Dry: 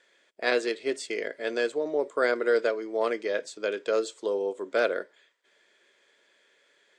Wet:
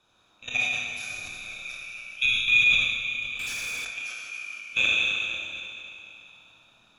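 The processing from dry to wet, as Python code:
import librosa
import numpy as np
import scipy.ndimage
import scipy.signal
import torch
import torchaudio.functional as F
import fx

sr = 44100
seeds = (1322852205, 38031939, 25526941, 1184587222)

y = fx.band_swap(x, sr, width_hz=2000)
y = fx.dmg_noise_band(y, sr, seeds[0], low_hz=130.0, high_hz=1200.0, level_db=-68.0)
y = fx.level_steps(y, sr, step_db=23)
y = fx.peak_eq(y, sr, hz=410.0, db=-8.0, octaves=0.51)
y = fx.echo_stepped(y, sr, ms=151, hz=3300.0, octaves=-1.4, feedback_pct=70, wet_db=-5.5)
y = fx.rev_schroeder(y, sr, rt60_s=2.8, comb_ms=25, drr_db=-5.5)
y = fx.leveller(y, sr, passes=3, at=(3.39, 3.85))
y = fx.sustainer(y, sr, db_per_s=42.0)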